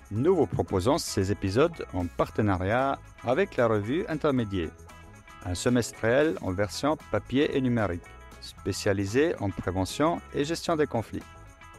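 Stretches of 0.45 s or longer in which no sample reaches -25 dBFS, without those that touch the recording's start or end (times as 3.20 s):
4.66–5.48 s
7.96–8.67 s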